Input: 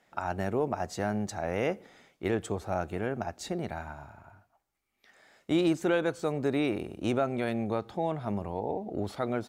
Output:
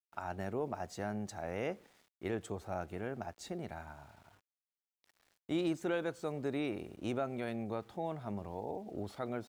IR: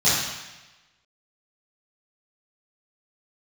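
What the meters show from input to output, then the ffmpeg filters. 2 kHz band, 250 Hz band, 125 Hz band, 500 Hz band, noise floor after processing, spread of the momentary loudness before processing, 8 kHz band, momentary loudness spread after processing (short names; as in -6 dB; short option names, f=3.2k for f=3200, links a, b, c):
-8.0 dB, -8.0 dB, -8.0 dB, -8.0 dB, under -85 dBFS, 9 LU, -8.0 dB, 9 LU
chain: -af "aeval=exprs='val(0)*gte(abs(val(0)),0.00211)':c=same,volume=-8dB"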